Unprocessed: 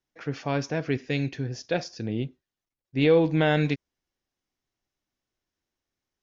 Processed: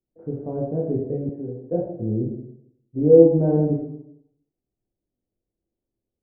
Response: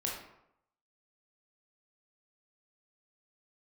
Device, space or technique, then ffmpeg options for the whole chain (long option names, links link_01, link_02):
next room: -filter_complex "[0:a]lowpass=frequency=580:width=0.5412,lowpass=frequency=580:width=1.3066[link_01];[1:a]atrim=start_sample=2205[link_02];[link_01][link_02]afir=irnorm=-1:irlink=0,asettb=1/sr,asplit=3[link_03][link_04][link_05];[link_03]atrim=end=1.294[link_06];[link_04]atrim=start=1.29:end=1.72,asetpts=PTS-STARTPTS,afade=type=in:duration=0.004:curve=qsin,afade=type=out:start_time=0.426:duration=0.004:curve=qsin,highpass=210[link_07];[link_05]atrim=start=1.716[link_08];[link_06][link_07]acrossfade=duration=0.004:curve1=hsin:curve2=qsin[link_09];[link_09][link_08]acrossfade=duration=0.004:curve1=qsin:curve2=hsin,volume=1.5dB"